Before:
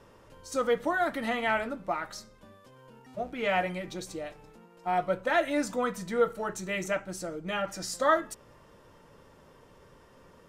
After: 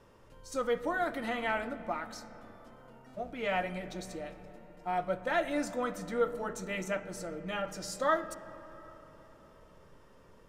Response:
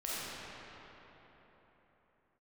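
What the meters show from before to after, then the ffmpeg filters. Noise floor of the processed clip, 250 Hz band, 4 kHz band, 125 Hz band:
−58 dBFS, −3.5 dB, −4.5 dB, −3.0 dB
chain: -filter_complex "[0:a]asplit=2[link_01][link_02];[link_02]aemphasis=mode=reproduction:type=bsi[link_03];[1:a]atrim=start_sample=2205[link_04];[link_03][link_04]afir=irnorm=-1:irlink=0,volume=-17.5dB[link_05];[link_01][link_05]amix=inputs=2:normalize=0,volume=-5dB"

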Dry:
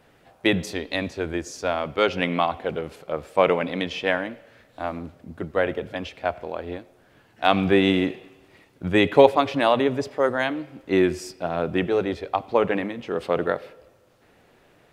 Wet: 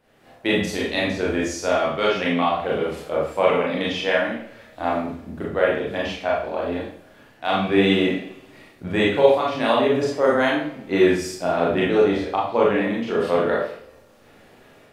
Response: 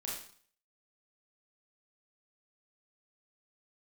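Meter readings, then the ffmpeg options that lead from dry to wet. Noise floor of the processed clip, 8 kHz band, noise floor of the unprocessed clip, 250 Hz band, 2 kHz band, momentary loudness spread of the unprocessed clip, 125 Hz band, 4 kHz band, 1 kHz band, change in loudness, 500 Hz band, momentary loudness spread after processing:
−52 dBFS, can't be measured, −58 dBFS, +2.0 dB, +2.5 dB, 14 LU, +0.5 dB, +2.5 dB, +1.5 dB, +2.0 dB, +3.0 dB, 11 LU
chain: -filter_complex "[0:a]dynaudnorm=framelen=130:gausssize=3:maxgain=9.5dB[link_01];[1:a]atrim=start_sample=2205[link_02];[link_01][link_02]afir=irnorm=-1:irlink=0,volume=-3dB"

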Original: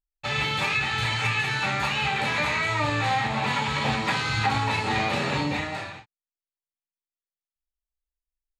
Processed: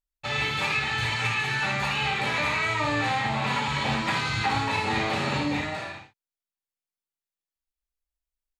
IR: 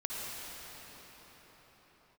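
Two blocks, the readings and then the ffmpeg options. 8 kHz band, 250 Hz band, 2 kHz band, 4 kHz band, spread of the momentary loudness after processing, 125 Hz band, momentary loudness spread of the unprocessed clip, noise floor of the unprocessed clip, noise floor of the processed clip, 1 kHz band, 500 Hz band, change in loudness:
−1.0 dB, 0.0 dB, −0.5 dB, −1.0 dB, 4 LU, −2.0 dB, 3 LU, below −85 dBFS, below −85 dBFS, −1.0 dB, −0.5 dB, −1.0 dB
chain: -af "aecho=1:1:58|79:0.447|0.316,volume=-2dB"

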